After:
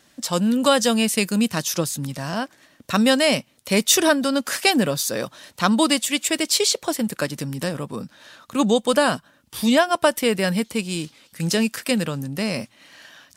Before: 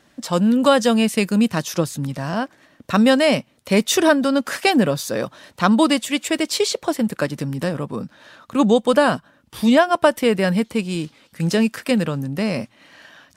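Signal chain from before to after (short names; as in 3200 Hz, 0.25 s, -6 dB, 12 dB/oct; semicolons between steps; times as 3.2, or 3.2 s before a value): high shelf 3200 Hz +10.5 dB; gain -3.5 dB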